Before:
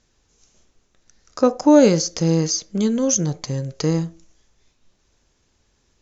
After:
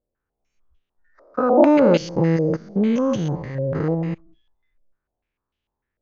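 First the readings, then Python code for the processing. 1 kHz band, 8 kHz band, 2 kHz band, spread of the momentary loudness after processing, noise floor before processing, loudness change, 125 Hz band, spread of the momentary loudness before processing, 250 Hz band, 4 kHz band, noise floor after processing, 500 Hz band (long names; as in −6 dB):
+3.0 dB, can't be measured, +2.0 dB, 12 LU, −65 dBFS, −0.5 dB, −0.5 dB, 12 LU, −1.0 dB, −9.0 dB, −83 dBFS, +1.0 dB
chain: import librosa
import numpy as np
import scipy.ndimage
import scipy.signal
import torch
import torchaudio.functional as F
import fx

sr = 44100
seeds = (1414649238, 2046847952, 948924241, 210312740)

y = fx.spec_steps(x, sr, hold_ms=200)
y = fx.noise_reduce_blind(y, sr, reduce_db=19)
y = fx.filter_held_lowpass(y, sr, hz=6.7, low_hz=570.0, high_hz=3000.0)
y = y * librosa.db_to_amplitude(1.5)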